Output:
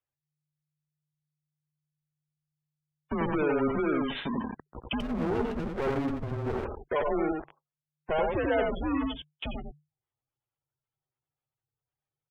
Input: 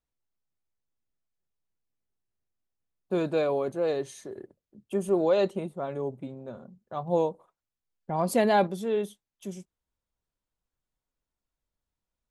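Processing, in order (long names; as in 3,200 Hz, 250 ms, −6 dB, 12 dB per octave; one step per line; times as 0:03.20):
in parallel at −10 dB: fuzz pedal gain 50 dB, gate −51 dBFS
on the sum: downward compressor 10 to 1, threshold −21 dBFS, peak gain reduction 7 dB
downsampling to 8,000 Hz
frequency shifter −150 Hz
on a send: single-tap delay 87 ms −3 dB
on the sum: gate on every frequency bin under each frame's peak −25 dB strong
low-shelf EQ 310 Hz −12 dB
0:05.00–0:06.65: windowed peak hold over 33 samples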